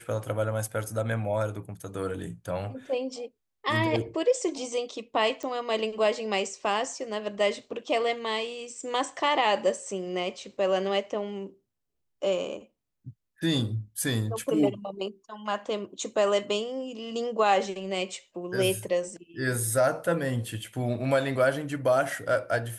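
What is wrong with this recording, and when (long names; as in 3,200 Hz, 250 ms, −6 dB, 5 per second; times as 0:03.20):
0:05.43: click −23 dBFS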